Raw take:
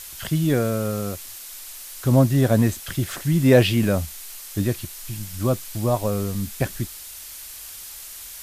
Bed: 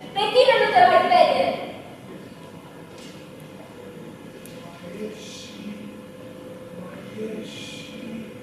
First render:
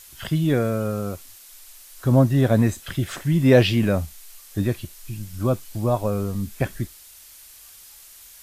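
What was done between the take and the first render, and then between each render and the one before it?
noise reduction from a noise print 8 dB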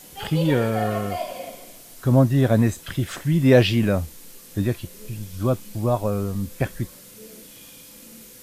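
mix in bed −14 dB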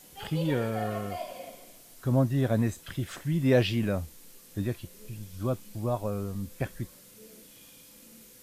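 level −8 dB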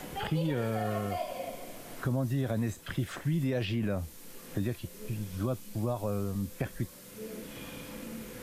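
brickwall limiter −22.5 dBFS, peak gain reduction 10.5 dB
multiband upward and downward compressor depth 70%

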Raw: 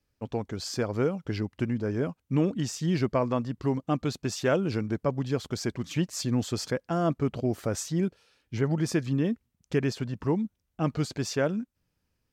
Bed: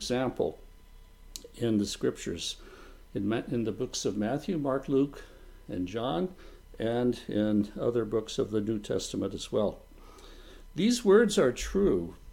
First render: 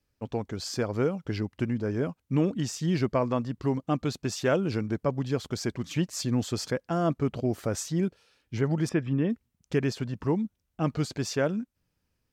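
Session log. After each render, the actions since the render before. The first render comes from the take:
0:08.89–0:09.30: Savitzky-Golay smoothing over 25 samples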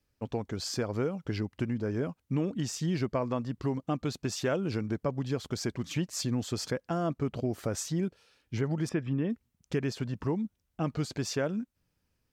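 downward compressor 2 to 1, threshold −29 dBFS, peak gain reduction 6 dB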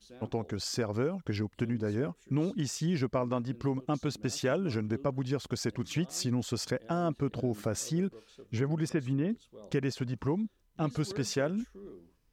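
mix in bed −22.5 dB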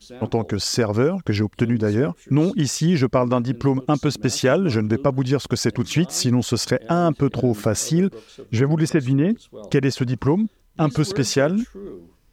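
level +12 dB

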